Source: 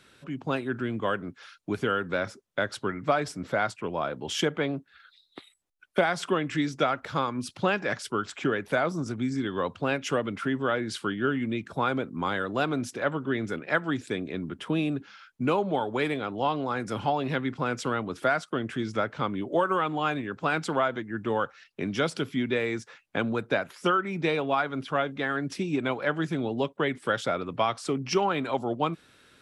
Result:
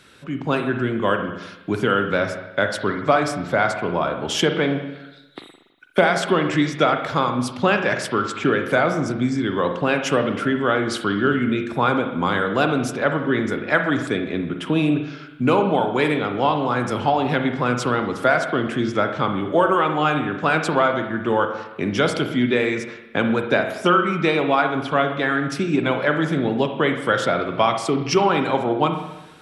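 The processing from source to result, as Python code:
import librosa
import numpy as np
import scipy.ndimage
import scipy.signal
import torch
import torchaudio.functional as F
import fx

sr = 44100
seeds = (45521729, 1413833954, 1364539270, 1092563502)

y = fx.rev_spring(x, sr, rt60_s=1.0, pass_ms=(40, 57), chirp_ms=25, drr_db=5.5)
y = y * librosa.db_to_amplitude(7.0)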